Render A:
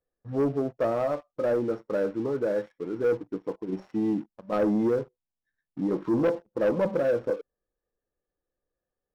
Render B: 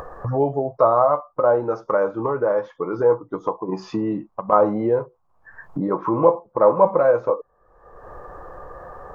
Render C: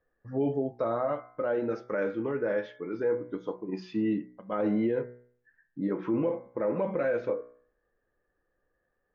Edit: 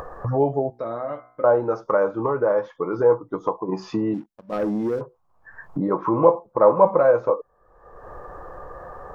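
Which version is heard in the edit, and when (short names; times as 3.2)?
B
0.7–1.44 from C
4.14–5.01 from A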